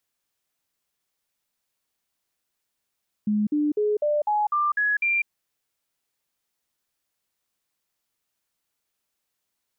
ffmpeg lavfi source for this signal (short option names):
-f lavfi -i "aevalsrc='0.106*clip(min(mod(t,0.25),0.2-mod(t,0.25))/0.005,0,1)*sin(2*PI*210*pow(2,floor(t/0.25)/2)*mod(t,0.25))':d=2:s=44100"